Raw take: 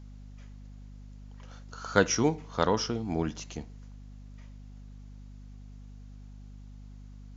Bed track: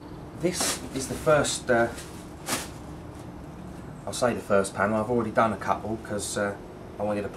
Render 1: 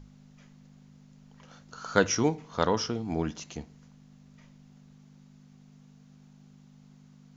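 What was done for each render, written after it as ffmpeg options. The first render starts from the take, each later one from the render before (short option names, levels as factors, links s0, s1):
-af "bandreject=f=50:t=h:w=6,bandreject=f=100:t=h:w=6"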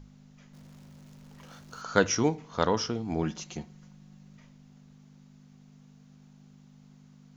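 -filter_complex "[0:a]asettb=1/sr,asplit=3[s0][s1][s2];[s0]atrim=end=0.534[s3];[s1]atrim=start=0.53:end=1.82,asetpts=PTS-STARTPTS,afade=t=in:d=0.004:c=qsin,afade=t=out:st=1.286:d=0.004:c=qsin,aeval=exprs='val(0)+0.5*0.00237*sgn(val(0))':c=same[s4];[s2]atrim=start=1.816[s5];[s3][s4]acrossfade=d=0.004:c1=hsin:c2=qsin[s6];[s6][s5]acrossfade=d=0.004:c1=qsin:c2=hsin,asettb=1/sr,asplit=3[s7][s8][s9];[s7]atrim=end=3.224[s10];[s8]atrim=start=3.22:end=4.37,asetpts=PTS-STARTPTS,afade=t=in:d=0.004:c=qsin,afade=t=out:st=1.146:d=0.004:c=qsin,aecho=1:1:5.5:0.6,atrim=end_sample=50715[s11];[s9]atrim=start=4.366[s12];[s10][s11]acrossfade=d=0.004:c1=hsin:c2=qsin[s13];[s13][s12]acrossfade=d=0.004:c1=qsin:c2=hsin"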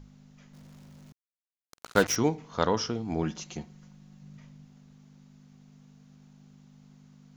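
-filter_complex "[0:a]asettb=1/sr,asplit=3[s0][s1][s2];[s0]atrim=end=1.124[s3];[s1]atrim=start=1.12:end=2.16,asetpts=PTS-STARTPTS,afade=t=in:d=0.004:c=qsin,afade=t=out:st=1.036:d=0.004:c=qsin,acrusher=bits=4:mix=0:aa=0.5[s4];[s2]atrim=start=2.156[s5];[s3][s4]acrossfade=d=0.004:c1=hsin:c2=qsin[s6];[s6][s5]acrossfade=d=0.004:c1=qsin:c2=hsin,asettb=1/sr,asplit=3[s7][s8][s9];[s7]atrim=end=4.224[s10];[s8]atrim=start=4.22:end=4.65,asetpts=PTS-STARTPTS,afade=t=in:d=0.004:c=qsin,afade=t=out:st=0.426:d=0.004:c=qsin,equalizer=f=130:w=1.3:g=6.5[s11];[s9]atrim=start=4.646[s12];[s10][s11]acrossfade=d=0.004:c1=hsin:c2=qsin[s13];[s13][s12]acrossfade=d=0.004:c1=qsin:c2=hsin"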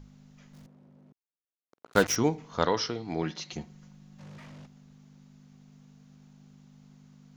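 -filter_complex "[0:a]asettb=1/sr,asplit=3[s0][s1][s2];[s0]atrim=end=0.664[s3];[s1]atrim=start=0.66:end=1.93,asetpts=PTS-STARTPTS,afade=t=in:d=0.004:c=qsin,afade=t=out:st=1.266:d=0.004:c=qsin,bandpass=f=400:t=q:w=0.93[s4];[s2]atrim=start=1.926[s5];[s3][s4]acrossfade=d=0.004:c1=hsin:c2=qsin[s6];[s6][s5]acrossfade=d=0.004:c1=qsin:c2=hsin,asettb=1/sr,asplit=3[s7][s8][s9];[s7]atrim=end=2.654[s10];[s8]atrim=start=2.65:end=3.53,asetpts=PTS-STARTPTS,afade=t=in:d=0.004:c=qsin,afade=t=out:st=0.876:d=0.004:c=qsin,highpass=130,equalizer=f=220:t=q:w=4:g=-7,equalizer=f=2000:t=q:w=4:g=7,equalizer=f=4100:t=q:w=4:g=10,equalizer=f=7000:t=q:w=4:g=-6,lowpass=f=7400:w=0.5412,lowpass=f=7400:w=1.3066[s11];[s9]atrim=start=3.526[s12];[s10][s11]acrossfade=d=0.004:c1=hsin:c2=qsin[s13];[s13][s12]acrossfade=d=0.004:c1=qsin:c2=hsin,asplit=3[s14][s15][s16];[s14]afade=t=out:st=4.18:d=0.02[s17];[s15]asplit=2[s18][s19];[s19]highpass=f=720:p=1,volume=31.6,asoftclip=type=tanh:threshold=0.0106[s20];[s18][s20]amix=inputs=2:normalize=0,lowpass=f=1800:p=1,volume=0.501,afade=t=in:st=4.18:d=0.02,afade=t=out:st=4.65:d=0.02[s21];[s16]afade=t=in:st=4.65:d=0.02[s22];[s17][s21][s22]amix=inputs=3:normalize=0"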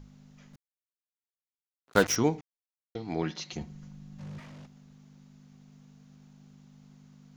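-filter_complex "[0:a]asettb=1/sr,asplit=3[s0][s1][s2];[s0]atrim=end=3.614[s3];[s1]atrim=start=3.61:end=4.4,asetpts=PTS-STARTPTS,afade=t=in:d=0.004:c=qsin,afade=t=out:st=0.786:d=0.004:c=qsin,lowshelf=f=180:g=10[s4];[s2]atrim=start=4.396[s5];[s3][s4]acrossfade=d=0.004:c1=hsin:c2=qsin[s6];[s6][s5]acrossfade=d=0.004:c1=qsin:c2=hsin,asplit=5[s7][s8][s9][s10][s11];[s7]atrim=end=0.56,asetpts=PTS-STARTPTS,afade=t=out:st=0.556:d=0.004:c=hsin[s12];[s8]atrim=start=0.56:end=1.87,asetpts=PTS-STARTPTS,volume=0[s13];[s9]atrim=start=1.87:end=2.41,asetpts=PTS-STARTPTS,afade=t=in:d=0.004:c=hsin,afade=t=out:st=0.536:d=0.004:c=hsin[s14];[s10]atrim=start=2.41:end=2.95,asetpts=PTS-STARTPTS,volume=0[s15];[s11]atrim=start=2.95,asetpts=PTS-STARTPTS,afade=t=in:d=0.004:c=hsin[s16];[s12][s13][s14][s15][s16]concat=n=5:v=0:a=1"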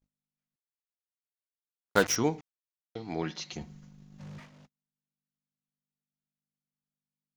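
-af "agate=range=0.0112:threshold=0.00501:ratio=16:detection=peak,lowshelf=f=440:g=-3.5"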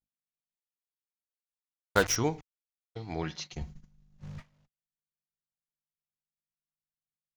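-af "asubboost=boost=9:cutoff=83,agate=range=0.178:threshold=0.00891:ratio=16:detection=peak"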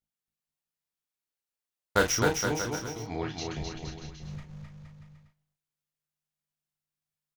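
-filter_complex "[0:a]asplit=2[s0][s1];[s1]adelay=34,volume=0.531[s2];[s0][s2]amix=inputs=2:normalize=0,aecho=1:1:260|468|634.4|767.5|874:0.631|0.398|0.251|0.158|0.1"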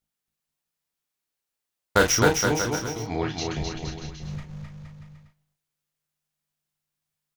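-af "volume=2,alimiter=limit=0.708:level=0:latency=1"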